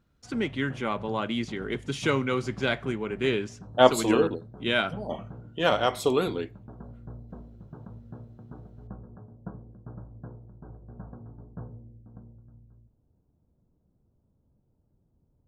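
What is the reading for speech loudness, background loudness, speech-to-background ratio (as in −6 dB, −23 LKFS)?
−27.0 LKFS, −45.5 LKFS, 18.5 dB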